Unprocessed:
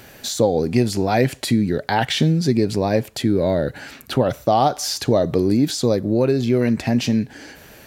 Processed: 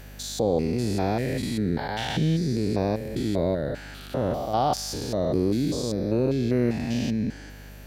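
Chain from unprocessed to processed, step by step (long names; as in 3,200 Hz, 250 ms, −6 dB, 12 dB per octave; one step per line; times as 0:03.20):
spectrum averaged block by block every 200 ms
mains hum 50 Hz, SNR 18 dB
level −4 dB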